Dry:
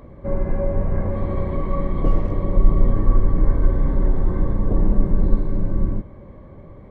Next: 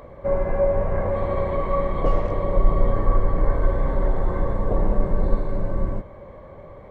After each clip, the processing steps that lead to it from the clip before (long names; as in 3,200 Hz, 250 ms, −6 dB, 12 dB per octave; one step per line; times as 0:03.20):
low shelf with overshoot 400 Hz −8 dB, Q 1.5
level +4.5 dB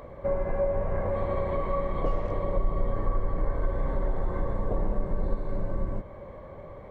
downward compressor 2 to 1, threshold −25 dBFS, peak gain reduction 9 dB
level −1.5 dB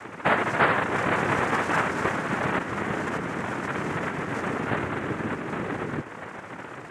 cochlear-implant simulation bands 3
level +5.5 dB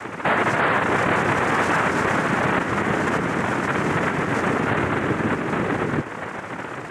brickwall limiter −18 dBFS, peak gain reduction 10.5 dB
level +7.5 dB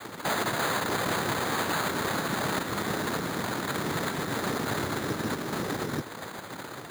decimation without filtering 8×
level −8.5 dB